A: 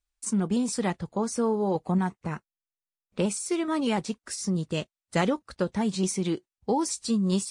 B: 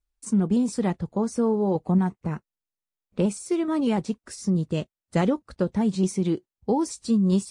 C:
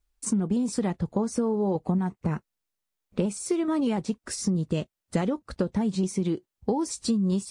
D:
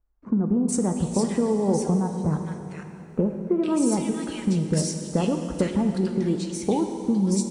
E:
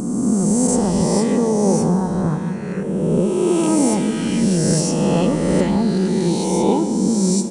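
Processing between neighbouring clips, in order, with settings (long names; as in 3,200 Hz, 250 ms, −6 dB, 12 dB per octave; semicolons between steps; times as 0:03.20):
tilt shelving filter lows +5 dB, about 740 Hz
downward compressor 6 to 1, threshold −29 dBFS, peak gain reduction 12 dB; level +6 dB
multiband delay without the direct sound lows, highs 460 ms, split 1,500 Hz; dense smooth reverb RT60 3.2 s, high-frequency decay 0.85×, DRR 5 dB; level +2.5 dB
peak hold with a rise ahead of every peak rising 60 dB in 2.11 s; echo through a band-pass that steps 543 ms, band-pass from 160 Hz, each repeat 0.7 octaves, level −10.5 dB; level +2.5 dB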